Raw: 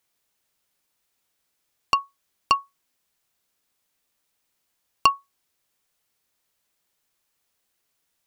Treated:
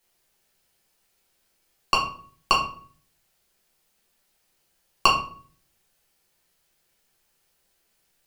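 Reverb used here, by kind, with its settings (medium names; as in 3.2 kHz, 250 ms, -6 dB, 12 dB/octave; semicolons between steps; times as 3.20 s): simulated room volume 43 m³, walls mixed, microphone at 1.1 m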